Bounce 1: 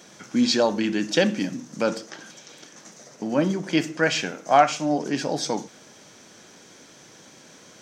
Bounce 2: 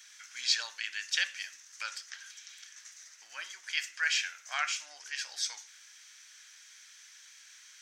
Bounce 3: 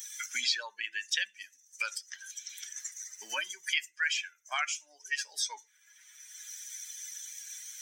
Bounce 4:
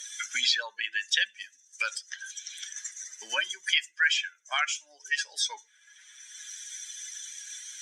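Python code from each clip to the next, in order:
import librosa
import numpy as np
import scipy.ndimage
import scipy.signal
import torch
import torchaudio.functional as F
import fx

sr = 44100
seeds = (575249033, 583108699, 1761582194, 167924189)

y1 = scipy.signal.sosfilt(scipy.signal.cheby1(3, 1.0, 1700.0, 'highpass', fs=sr, output='sos'), x)
y1 = y1 * 10.0 ** (-2.5 / 20.0)
y2 = fx.bin_expand(y1, sr, power=2.0)
y2 = fx.band_squash(y2, sr, depth_pct=100)
y2 = y2 * 10.0 ** (6.0 / 20.0)
y3 = fx.cabinet(y2, sr, low_hz=130.0, low_slope=24, high_hz=10000.0, hz=(520.0, 1600.0, 3400.0), db=(5, 6, 7))
y3 = y3 * 10.0 ** (2.0 / 20.0)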